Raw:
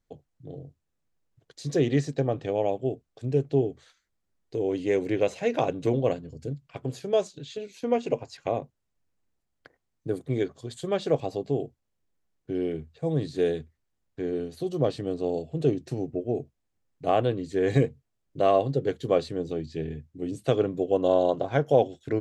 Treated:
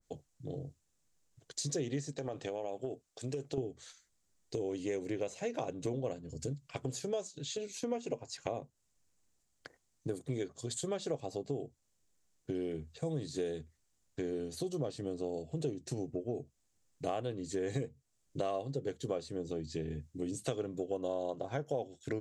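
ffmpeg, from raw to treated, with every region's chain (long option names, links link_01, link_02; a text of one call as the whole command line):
ffmpeg -i in.wav -filter_complex "[0:a]asettb=1/sr,asplit=3[link_01][link_02][link_03];[link_01]atrim=end=2.184[link_04];[link_02]atrim=start=2.18:end=3.58,asetpts=PTS-STARTPTS,afade=type=in:duration=0.004:curve=qsin,afade=type=out:start_time=1.396:duration=0.004:curve=qsin,lowshelf=frequency=240:gain=-11,acompressor=threshold=-28dB:ratio=6:attack=3.2:release=140:knee=1:detection=peak[link_05];[link_03]atrim=start=3.576[link_06];[link_04][link_05]acrossfade=duration=0.004:curve1=hsin:curve2=qsin[link_07];[link_07][link_06]acrossfade=duration=0.004:curve1=qsin:curve2=hsin,equalizer=frequency=7200:width_type=o:width=1.3:gain=14,acompressor=threshold=-35dB:ratio=4,adynamicequalizer=threshold=0.00251:dfrequency=1600:dqfactor=0.7:tfrequency=1600:tqfactor=0.7:attack=5:release=100:ratio=0.375:range=2.5:mode=cutabove:tftype=highshelf" out.wav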